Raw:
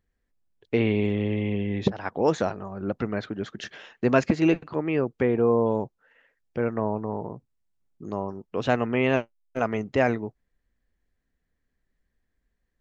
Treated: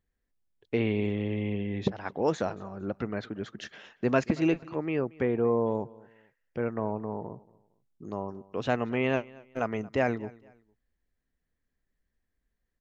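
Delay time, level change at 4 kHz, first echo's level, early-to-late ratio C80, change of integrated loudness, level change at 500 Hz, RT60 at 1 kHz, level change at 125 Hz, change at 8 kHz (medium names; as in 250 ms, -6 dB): 229 ms, -4.5 dB, -22.5 dB, no reverb, -4.5 dB, -4.5 dB, no reverb, -4.5 dB, no reading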